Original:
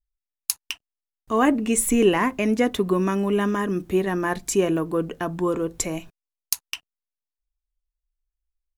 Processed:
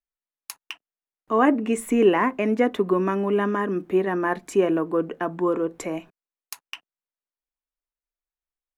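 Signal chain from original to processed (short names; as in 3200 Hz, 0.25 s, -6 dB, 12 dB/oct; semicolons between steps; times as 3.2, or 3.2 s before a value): three-band isolator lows -20 dB, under 190 Hz, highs -15 dB, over 2500 Hz; gain +1.5 dB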